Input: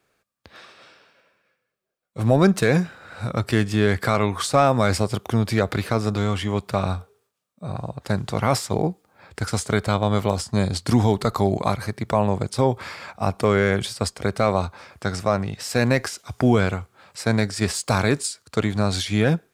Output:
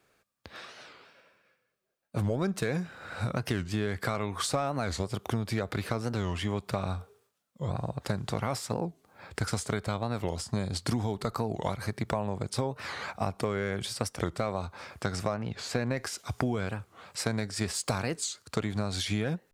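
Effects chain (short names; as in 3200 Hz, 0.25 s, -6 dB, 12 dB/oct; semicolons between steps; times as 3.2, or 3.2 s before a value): 15.34–15.97 high shelf 4700 Hz -12 dB; compressor 6:1, threshold -27 dBFS, peak gain reduction 14.5 dB; record warp 45 rpm, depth 250 cents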